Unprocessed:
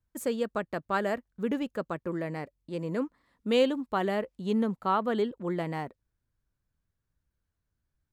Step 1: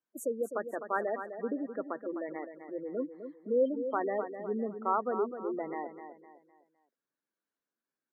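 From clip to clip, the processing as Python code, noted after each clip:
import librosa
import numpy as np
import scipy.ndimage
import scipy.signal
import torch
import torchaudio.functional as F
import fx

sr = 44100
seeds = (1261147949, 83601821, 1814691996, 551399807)

y = scipy.signal.sosfilt(scipy.signal.butter(4, 260.0, 'highpass', fs=sr, output='sos'), x)
y = fx.spec_gate(y, sr, threshold_db=-15, keep='strong')
y = fx.echo_feedback(y, sr, ms=255, feedback_pct=36, wet_db=-9.5)
y = F.gain(torch.from_numpy(y), -2.5).numpy()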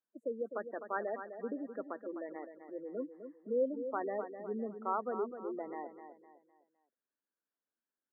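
y = scipy.signal.sosfilt(scipy.signal.ellip(3, 1.0, 40, [190.0, 1800.0], 'bandpass', fs=sr, output='sos'), x)
y = F.gain(torch.from_numpy(y), -4.5).numpy()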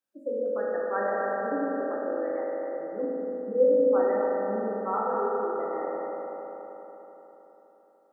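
y = fx.rev_fdn(x, sr, rt60_s=4.0, lf_ratio=1.0, hf_ratio=0.65, size_ms=11.0, drr_db=-6.5)
y = F.gain(torch.from_numpy(y), 1.5).numpy()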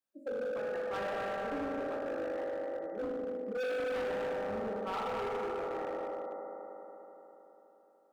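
y = np.clip(x, -10.0 ** (-28.5 / 20.0), 10.0 ** (-28.5 / 20.0))
y = F.gain(torch.from_numpy(y), -4.5).numpy()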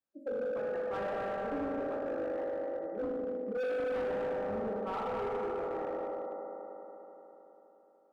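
y = fx.high_shelf(x, sr, hz=2000.0, db=-11.0)
y = F.gain(torch.from_numpy(y), 2.0).numpy()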